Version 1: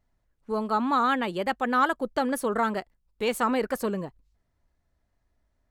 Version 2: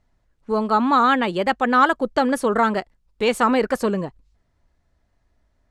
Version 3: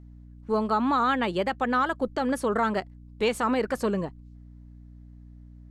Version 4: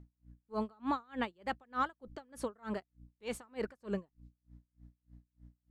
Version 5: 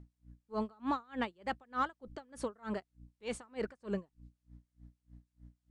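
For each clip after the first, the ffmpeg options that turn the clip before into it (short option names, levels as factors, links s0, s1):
-af "lowpass=8200,volume=2.24"
-af "alimiter=limit=0.251:level=0:latency=1:release=156,aeval=exprs='val(0)+0.00794*(sin(2*PI*60*n/s)+sin(2*PI*2*60*n/s)/2+sin(2*PI*3*60*n/s)/3+sin(2*PI*4*60*n/s)/4+sin(2*PI*5*60*n/s)/5)':c=same,volume=0.668"
-af "aeval=exprs='val(0)*pow(10,-35*(0.5-0.5*cos(2*PI*3.3*n/s))/20)':c=same,volume=0.501"
-filter_complex "[0:a]asplit=2[s0][s1];[s1]asoftclip=type=tanh:threshold=0.015,volume=0.282[s2];[s0][s2]amix=inputs=2:normalize=0,aresample=22050,aresample=44100,volume=0.891"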